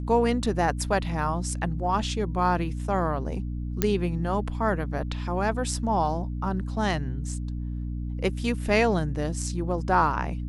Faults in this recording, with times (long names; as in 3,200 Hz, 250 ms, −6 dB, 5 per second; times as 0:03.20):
mains hum 60 Hz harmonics 5 −31 dBFS
0:03.82: click −7 dBFS